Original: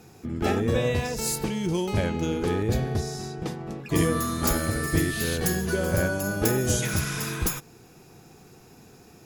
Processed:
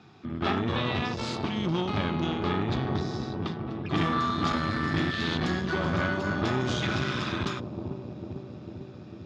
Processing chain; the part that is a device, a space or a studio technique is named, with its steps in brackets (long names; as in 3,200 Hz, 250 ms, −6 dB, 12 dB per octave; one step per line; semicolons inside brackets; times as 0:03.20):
analogue delay pedal into a guitar amplifier (bucket-brigade delay 449 ms, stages 2,048, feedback 74%, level −7 dB; tube saturation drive 23 dB, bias 0.8; loudspeaker in its box 100–4,500 Hz, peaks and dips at 490 Hz −10 dB, 1,200 Hz +7 dB, 3,500 Hz +7 dB)
level +3 dB